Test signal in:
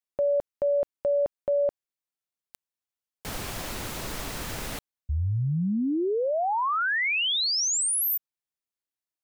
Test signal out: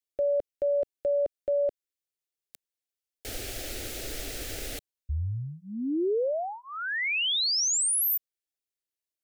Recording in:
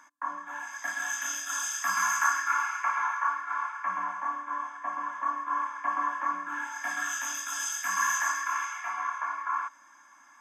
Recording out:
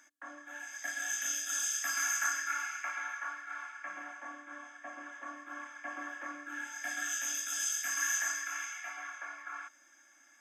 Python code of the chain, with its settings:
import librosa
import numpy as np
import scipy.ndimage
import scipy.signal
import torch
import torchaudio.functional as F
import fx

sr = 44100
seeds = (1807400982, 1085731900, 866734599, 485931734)

y = fx.fixed_phaser(x, sr, hz=420.0, stages=4)